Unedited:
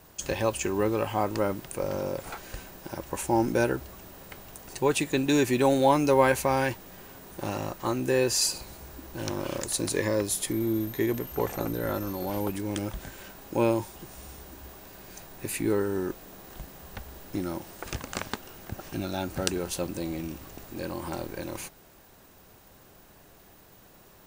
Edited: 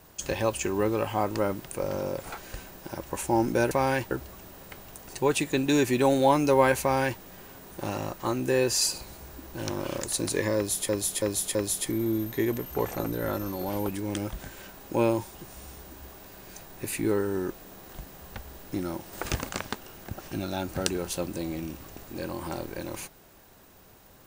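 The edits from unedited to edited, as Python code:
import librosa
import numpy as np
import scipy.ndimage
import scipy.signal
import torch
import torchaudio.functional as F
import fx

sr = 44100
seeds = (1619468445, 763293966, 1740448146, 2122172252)

y = fx.edit(x, sr, fx.duplicate(start_s=6.41, length_s=0.4, to_s=3.71),
    fx.repeat(start_s=10.16, length_s=0.33, count=4),
    fx.clip_gain(start_s=17.74, length_s=0.36, db=5.0), tone=tone)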